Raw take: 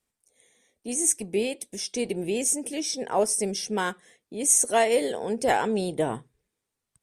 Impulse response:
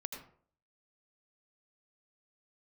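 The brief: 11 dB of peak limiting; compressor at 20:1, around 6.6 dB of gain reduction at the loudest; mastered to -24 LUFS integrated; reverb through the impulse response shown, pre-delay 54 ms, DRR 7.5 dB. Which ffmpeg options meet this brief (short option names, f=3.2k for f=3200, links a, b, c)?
-filter_complex "[0:a]acompressor=threshold=-23dB:ratio=20,alimiter=level_in=1dB:limit=-24dB:level=0:latency=1,volume=-1dB,asplit=2[a][b];[1:a]atrim=start_sample=2205,adelay=54[c];[b][c]afir=irnorm=-1:irlink=0,volume=-6dB[d];[a][d]amix=inputs=2:normalize=0,volume=9dB"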